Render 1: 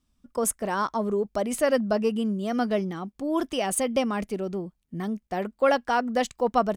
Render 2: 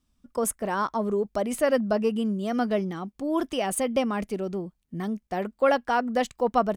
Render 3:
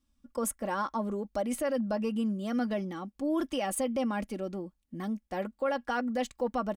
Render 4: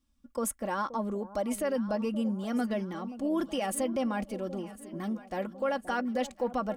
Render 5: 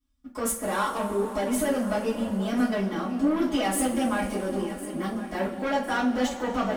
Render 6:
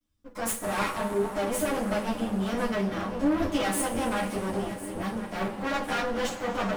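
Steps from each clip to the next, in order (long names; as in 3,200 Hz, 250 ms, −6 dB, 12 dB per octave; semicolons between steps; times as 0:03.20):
dynamic equaliser 6,200 Hz, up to −4 dB, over −43 dBFS, Q 0.75
comb filter 3.6 ms, depth 55%; brickwall limiter −17 dBFS, peak gain reduction 9 dB; level −5 dB
delay that swaps between a low-pass and a high-pass 526 ms, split 920 Hz, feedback 69%, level −13.5 dB
leveller curve on the samples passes 2; coupled-rooms reverb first 0.29 s, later 4.2 s, from −21 dB, DRR −9.5 dB; level −8 dB
lower of the sound and its delayed copy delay 9.9 ms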